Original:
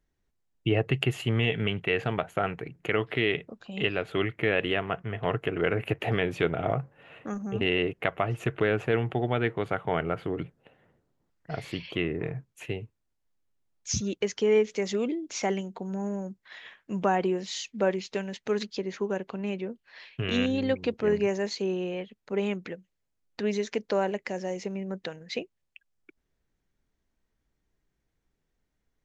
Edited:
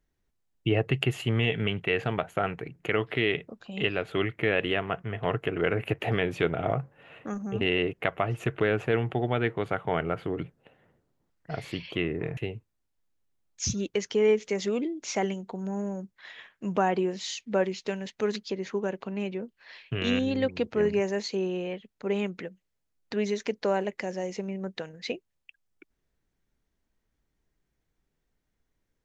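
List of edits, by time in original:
12.37–12.64 cut

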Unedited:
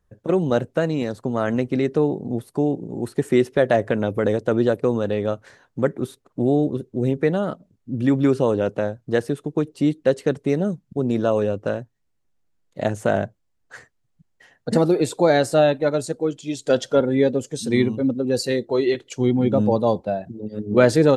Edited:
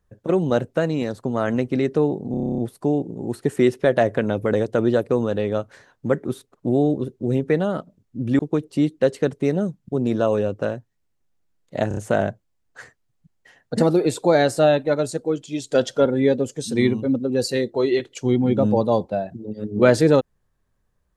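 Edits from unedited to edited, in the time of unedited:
2.31 stutter 0.03 s, 10 plays
8.12–9.43 cut
12.92 stutter 0.03 s, 4 plays

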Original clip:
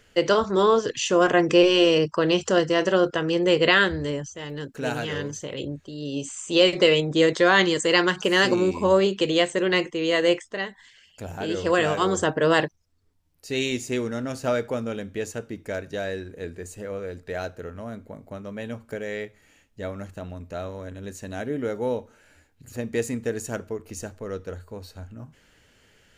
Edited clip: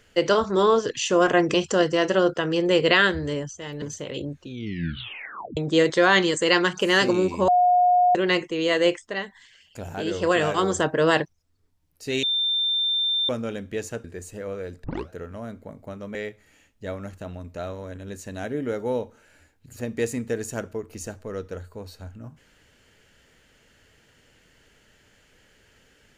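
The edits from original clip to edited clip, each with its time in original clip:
1.54–2.31 cut
4.59–5.25 cut
5.77 tape stop 1.23 s
8.91–9.58 bleep 719 Hz -14.5 dBFS
13.66–14.72 bleep 3580 Hz -20.5 dBFS
15.47–16.48 cut
17.28 tape start 0.25 s
18.59–19.11 cut

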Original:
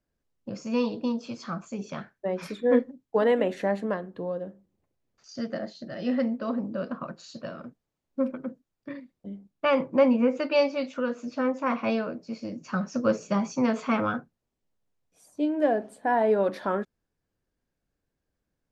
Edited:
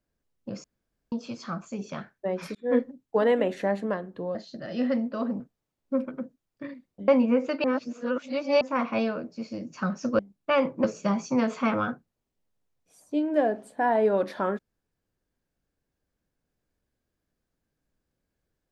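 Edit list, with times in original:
0.64–1.12 room tone
2.55–2.8 fade in
4.35–5.63 cut
6.68–7.66 cut
9.34–9.99 move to 13.1
10.55–11.52 reverse

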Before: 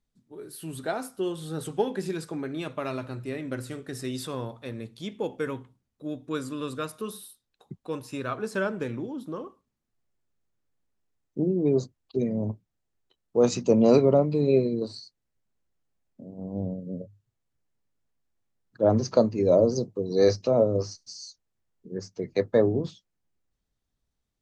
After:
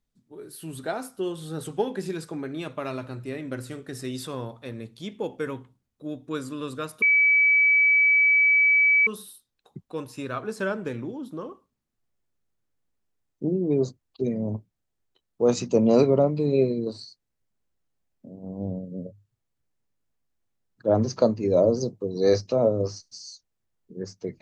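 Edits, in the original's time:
7.02 add tone 2290 Hz -15.5 dBFS 2.05 s

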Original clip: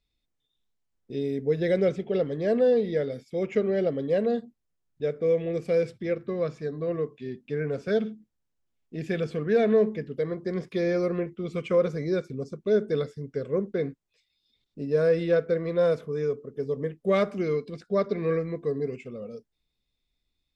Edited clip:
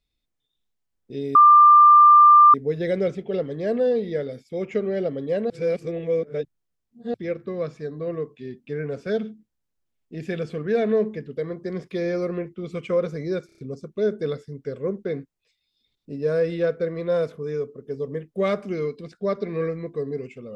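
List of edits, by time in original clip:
1.35 add tone 1190 Hz -8 dBFS 1.19 s
4.31–5.95 reverse
12.27 stutter 0.03 s, 5 plays

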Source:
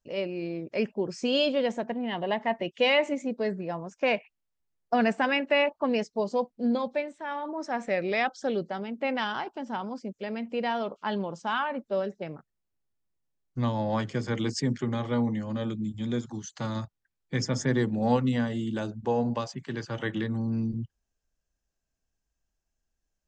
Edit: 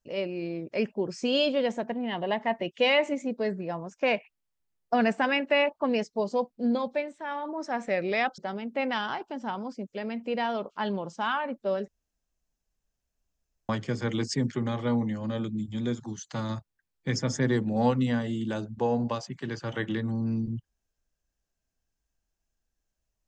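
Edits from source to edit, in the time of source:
8.38–8.64 cut
12.14–13.95 room tone

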